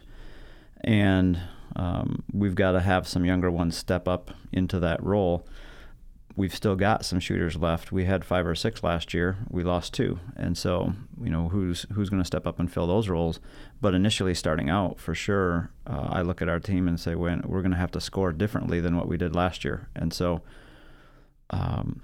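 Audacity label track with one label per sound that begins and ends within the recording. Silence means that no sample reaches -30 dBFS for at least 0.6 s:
0.840000	5.380000	sound
6.380000	20.370000	sound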